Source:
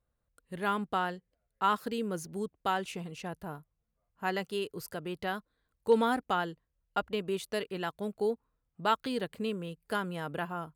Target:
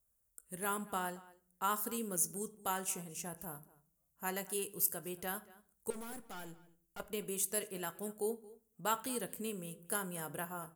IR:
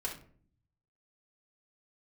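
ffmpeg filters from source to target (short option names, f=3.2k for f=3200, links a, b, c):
-filter_complex "[0:a]aexciter=amount=7.4:drive=8.2:freq=6.1k,asettb=1/sr,asplit=3[a][b][c];[a]atrim=end=5.904[d];[b]atrim=start=5.9:end=7,asetpts=PTS-STARTPTS,afade=t=in:d=0.004:c=qsin,afade=t=out:st=1.096:d=0.004:c=qsin,aeval=exprs='(tanh(79.4*val(0)+0.4)-tanh(0.4))/79.4':c=same[e];[c]atrim=start=6.996[f];[d][e]acrossfade=d=0.004:c1=hsin:c2=qsin[g];[g][f]acrossfade=d=0.004:c1=qsin:c2=hsin,asplit=2[h][i];[i]adelay=227.4,volume=-20dB,highshelf=f=4k:g=-5.12[j];[h][j]amix=inputs=2:normalize=0,asplit=2[k][l];[1:a]atrim=start_sample=2205,adelay=17[m];[l][m]afir=irnorm=-1:irlink=0,volume=-13.5dB[n];[k][n]amix=inputs=2:normalize=0,volume=-7.5dB"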